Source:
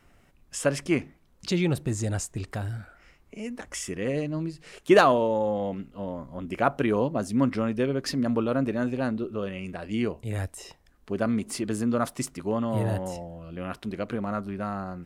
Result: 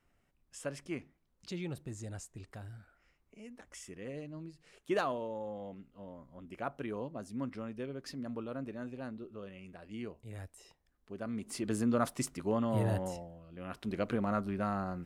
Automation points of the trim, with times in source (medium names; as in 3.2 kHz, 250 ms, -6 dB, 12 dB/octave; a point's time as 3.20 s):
11.21 s -15 dB
11.73 s -4.5 dB
13.06 s -4.5 dB
13.48 s -13.5 dB
13.96 s -2.5 dB